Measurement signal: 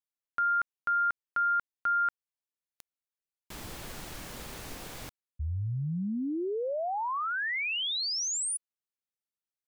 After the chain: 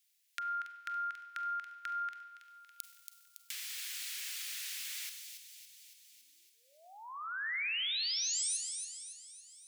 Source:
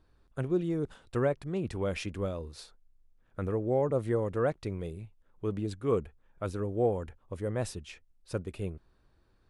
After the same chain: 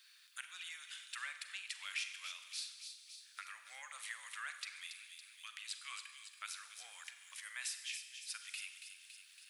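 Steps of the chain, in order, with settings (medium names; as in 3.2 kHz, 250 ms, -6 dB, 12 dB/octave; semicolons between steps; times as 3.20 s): inverse Chebyshev high-pass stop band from 450 Hz, stop band 70 dB; compression 2.5:1, threshold -53 dBFS; feedback echo behind a high-pass 280 ms, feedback 47%, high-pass 3 kHz, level -6.5 dB; Schroeder reverb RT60 1.1 s, combs from 32 ms, DRR 8 dB; tape noise reduction on one side only encoder only; trim +10 dB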